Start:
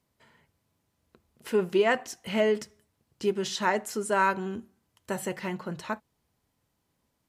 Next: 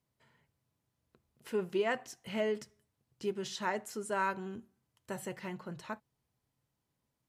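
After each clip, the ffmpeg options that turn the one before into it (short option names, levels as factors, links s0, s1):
-af "equalizer=f=130:w=6.1:g=9.5,volume=0.376"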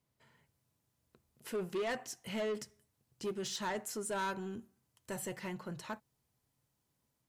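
-filter_complex "[0:a]acrossover=split=5200[s0][s1];[s1]dynaudnorm=f=180:g=3:m=1.78[s2];[s0][s2]amix=inputs=2:normalize=0,asoftclip=type=tanh:threshold=0.0237,volume=1.12"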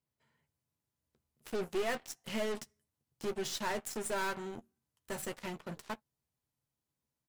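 -filter_complex "[0:a]aeval=exprs='0.0266*(cos(1*acos(clip(val(0)/0.0266,-1,1)))-cos(1*PI/2))+0.00473*(cos(2*acos(clip(val(0)/0.0266,-1,1)))-cos(2*PI/2))+0.00168*(cos(3*acos(clip(val(0)/0.0266,-1,1)))-cos(3*PI/2))+0.00422*(cos(7*acos(clip(val(0)/0.0266,-1,1)))-cos(7*PI/2))':c=same,asplit=2[s0][s1];[s1]adelay=13,volume=0.282[s2];[s0][s2]amix=inputs=2:normalize=0,volume=1.19"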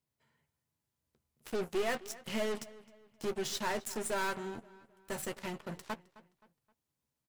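-filter_complex "[0:a]asplit=2[s0][s1];[s1]adelay=262,lowpass=f=4800:p=1,volume=0.112,asplit=2[s2][s3];[s3]adelay=262,lowpass=f=4800:p=1,volume=0.4,asplit=2[s4][s5];[s5]adelay=262,lowpass=f=4800:p=1,volume=0.4[s6];[s0][s2][s4][s6]amix=inputs=4:normalize=0,volume=1.12"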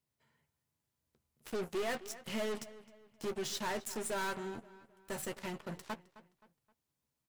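-af "asoftclip=type=tanh:threshold=0.0316"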